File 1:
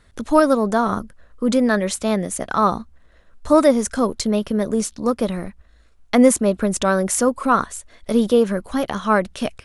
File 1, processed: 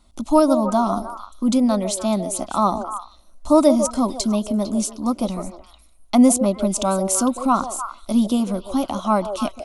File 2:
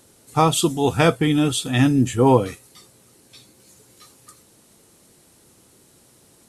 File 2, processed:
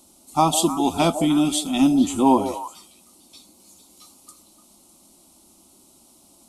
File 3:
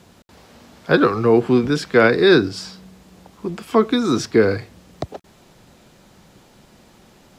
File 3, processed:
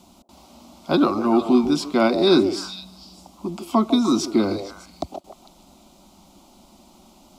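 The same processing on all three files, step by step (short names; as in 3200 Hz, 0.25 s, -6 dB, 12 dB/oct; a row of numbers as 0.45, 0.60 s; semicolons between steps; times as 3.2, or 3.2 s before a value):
fixed phaser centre 460 Hz, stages 6; delay with a stepping band-pass 0.151 s, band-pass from 510 Hz, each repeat 1.4 oct, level -5 dB; match loudness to -20 LUFS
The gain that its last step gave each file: +1.5, +1.5, +1.5 dB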